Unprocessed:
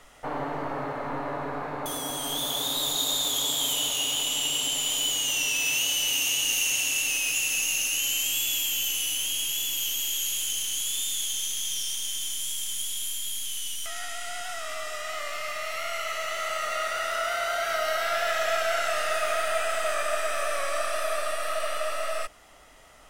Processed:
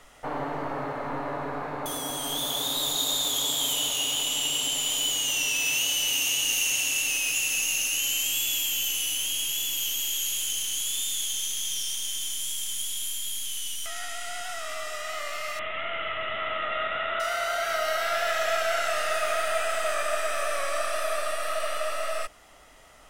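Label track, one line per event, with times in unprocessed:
15.590000	17.200000	careless resampling rate divided by 6×, down none, up filtered

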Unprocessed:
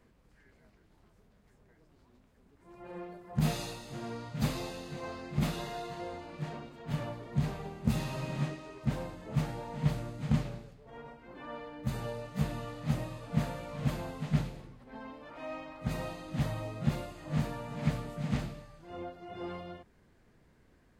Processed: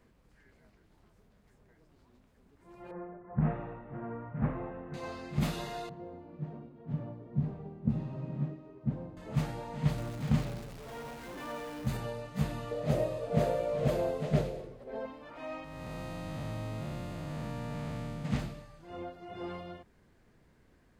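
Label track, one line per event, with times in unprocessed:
2.910000	4.940000	inverse Chebyshev low-pass stop band from 4400 Hz, stop band 50 dB
5.890000	9.170000	band-pass 190 Hz, Q 0.66
9.980000	11.970000	zero-crossing step of -43 dBFS
12.710000	15.060000	band shelf 500 Hz +13.5 dB 1.1 oct
15.640000	18.250000	time blur width 0.427 s

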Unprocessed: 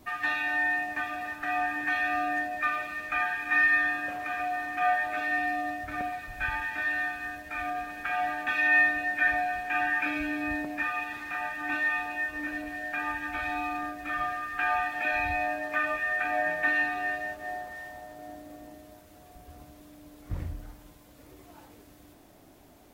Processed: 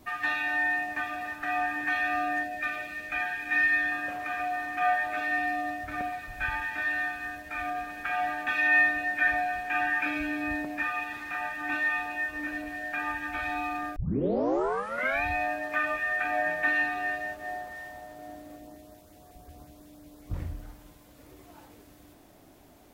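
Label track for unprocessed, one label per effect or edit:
2.430000	3.920000	bell 1100 Hz -13.5 dB 0.45 oct
13.960000	13.960000	tape start 1.28 s
18.580000	20.340000	LFO notch saw up 5.5 Hz 950–3300 Hz

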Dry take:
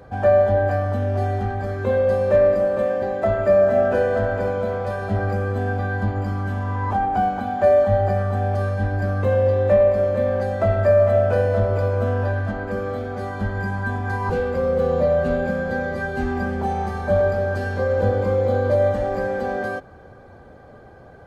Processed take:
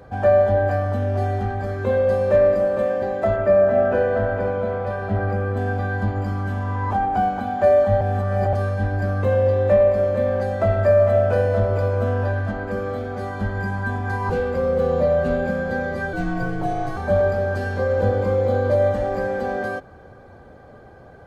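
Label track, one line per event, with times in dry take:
3.360000	5.570000	tone controls bass 0 dB, treble -11 dB
8.010000	8.530000	reverse
16.130000	16.970000	frequency shift -70 Hz

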